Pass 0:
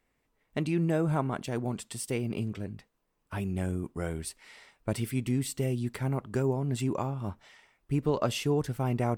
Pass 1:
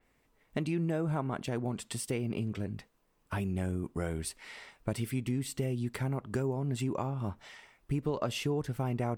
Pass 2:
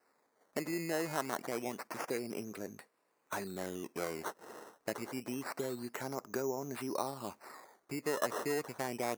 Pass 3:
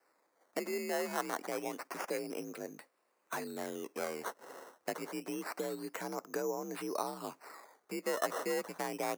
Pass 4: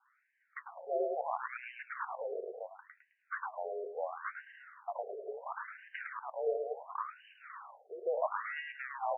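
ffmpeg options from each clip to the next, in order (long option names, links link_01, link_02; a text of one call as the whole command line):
ffmpeg -i in.wav -af "acompressor=threshold=-38dB:ratio=2.5,adynamicequalizer=threshold=0.00126:dfrequency=4300:dqfactor=0.7:tfrequency=4300:tqfactor=0.7:attack=5:release=100:ratio=0.375:range=2.5:mode=cutabove:tftype=highshelf,volume=5dB" out.wav
ffmpeg -i in.wav -af "acrusher=samples=13:mix=1:aa=0.000001:lfo=1:lforange=13:lforate=0.27,highpass=380,equalizer=frequency=3300:width_type=o:width=0.56:gain=-11.5,volume=1dB" out.wav
ffmpeg -i in.wav -af "afreqshift=52" out.wav
ffmpeg -i in.wav -filter_complex "[0:a]asplit=2[link_01][link_02];[link_02]highpass=frequency=720:poles=1,volume=9dB,asoftclip=type=tanh:threshold=-18dB[link_03];[link_01][link_03]amix=inputs=2:normalize=0,lowpass=frequency=1900:poles=1,volume=-6dB,asplit=2[link_04][link_05];[link_05]aecho=0:1:106|212|318|424:0.668|0.221|0.0728|0.024[link_06];[link_04][link_06]amix=inputs=2:normalize=0,afftfilt=real='re*between(b*sr/1024,500*pow(2200/500,0.5+0.5*sin(2*PI*0.72*pts/sr))/1.41,500*pow(2200/500,0.5+0.5*sin(2*PI*0.72*pts/sr))*1.41)':imag='im*between(b*sr/1024,500*pow(2200/500,0.5+0.5*sin(2*PI*0.72*pts/sr))/1.41,500*pow(2200/500,0.5+0.5*sin(2*PI*0.72*pts/sr))*1.41)':win_size=1024:overlap=0.75,volume=2dB" out.wav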